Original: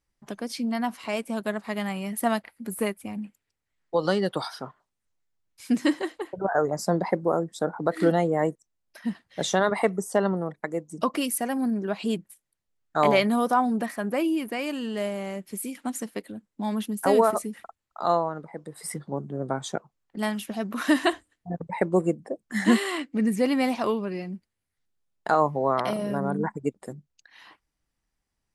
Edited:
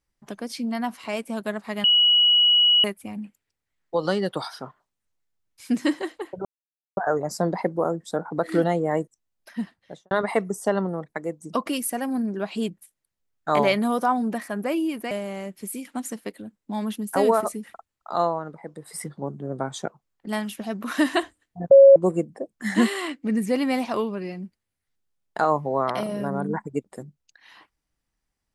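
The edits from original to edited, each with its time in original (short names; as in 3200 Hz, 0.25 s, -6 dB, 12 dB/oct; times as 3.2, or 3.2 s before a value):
1.84–2.84 bleep 2920 Hz -14 dBFS
6.45 insert silence 0.52 s
9.1–9.59 studio fade out
14.59–15.01 cut
21.61–21.86 bleep 549 Hz -6.5 dBFS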